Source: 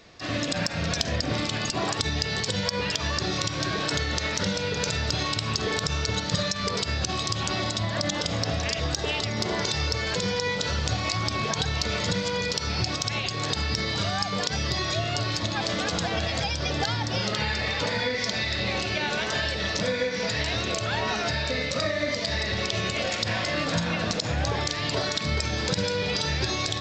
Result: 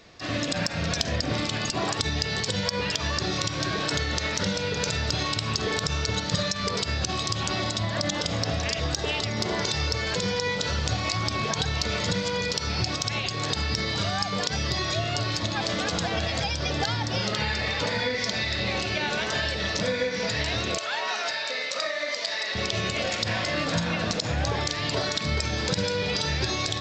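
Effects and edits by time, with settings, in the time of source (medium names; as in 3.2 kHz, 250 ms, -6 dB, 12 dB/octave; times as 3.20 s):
20.78–22.55 s: high-pass 630 Hz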